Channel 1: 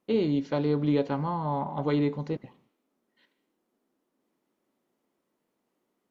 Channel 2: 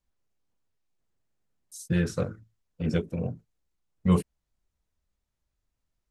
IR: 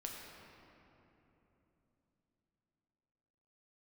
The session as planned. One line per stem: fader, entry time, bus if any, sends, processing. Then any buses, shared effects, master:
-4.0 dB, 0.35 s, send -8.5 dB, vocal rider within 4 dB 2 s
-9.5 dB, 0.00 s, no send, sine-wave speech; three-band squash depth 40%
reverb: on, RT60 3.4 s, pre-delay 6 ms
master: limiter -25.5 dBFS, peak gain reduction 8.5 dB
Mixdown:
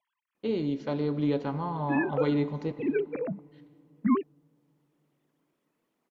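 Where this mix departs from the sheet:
stem 2 -9.5 dB -> -1.0 dB; master: missing limiter -25.5 dBFS, peak gain reduction 8.5 dB

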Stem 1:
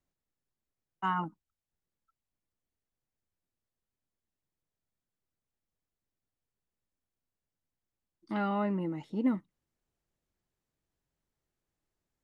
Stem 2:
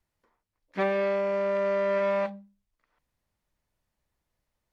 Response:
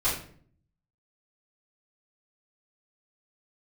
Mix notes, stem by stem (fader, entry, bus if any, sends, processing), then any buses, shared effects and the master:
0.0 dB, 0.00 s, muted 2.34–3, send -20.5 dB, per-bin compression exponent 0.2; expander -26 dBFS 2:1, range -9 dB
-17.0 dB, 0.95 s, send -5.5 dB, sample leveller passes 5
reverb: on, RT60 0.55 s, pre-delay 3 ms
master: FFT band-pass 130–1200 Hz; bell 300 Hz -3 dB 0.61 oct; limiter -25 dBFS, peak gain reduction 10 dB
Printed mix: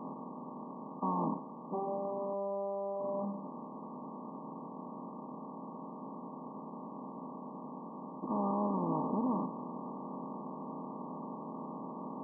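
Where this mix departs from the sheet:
stem 1: send off; reverb return -7.5 dB

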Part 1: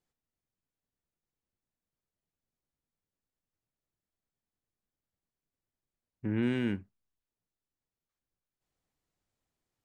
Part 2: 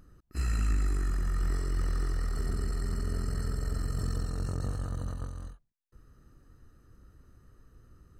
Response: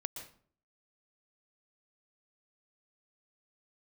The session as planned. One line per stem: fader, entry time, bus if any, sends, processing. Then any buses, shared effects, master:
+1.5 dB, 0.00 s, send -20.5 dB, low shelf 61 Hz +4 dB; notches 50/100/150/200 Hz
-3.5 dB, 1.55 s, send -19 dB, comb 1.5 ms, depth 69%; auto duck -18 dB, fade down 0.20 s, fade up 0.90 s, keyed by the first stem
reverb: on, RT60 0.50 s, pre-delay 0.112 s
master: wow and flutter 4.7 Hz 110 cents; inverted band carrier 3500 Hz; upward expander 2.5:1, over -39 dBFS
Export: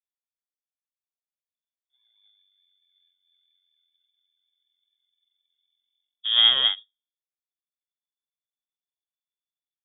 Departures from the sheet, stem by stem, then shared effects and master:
stem 1 +1.5 dB -> +13.0 dB; stem 2 -3.5 dB -> -14.5 dB

